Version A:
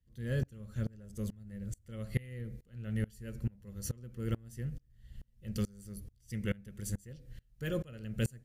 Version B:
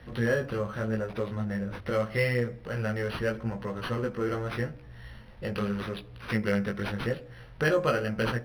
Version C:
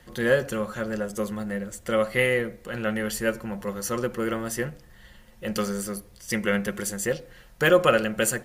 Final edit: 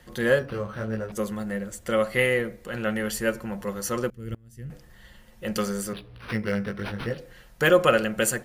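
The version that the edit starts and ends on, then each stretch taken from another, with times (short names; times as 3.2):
C
0.39–1.12 from B
4.1–4.7 from A
5.93–7.18 from B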